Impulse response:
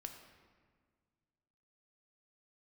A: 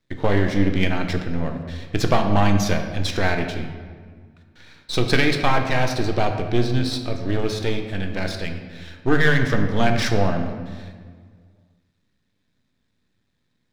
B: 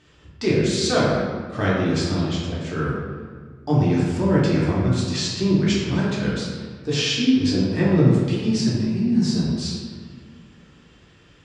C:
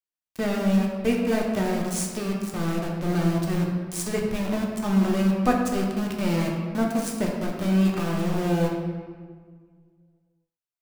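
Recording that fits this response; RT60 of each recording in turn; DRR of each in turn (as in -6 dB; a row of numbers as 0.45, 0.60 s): A; 1.7, 1.7, 1.7 s; 4.5, -7.0, -1.0 dB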